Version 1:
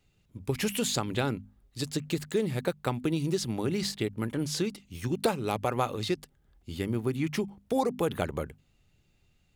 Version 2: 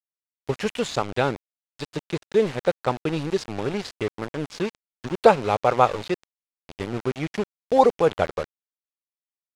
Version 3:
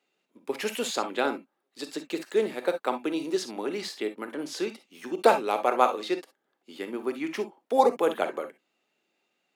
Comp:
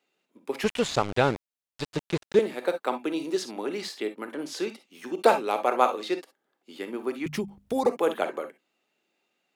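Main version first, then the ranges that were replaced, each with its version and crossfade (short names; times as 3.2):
3
0.64–2.39 from 2
7.26–7.86 from 1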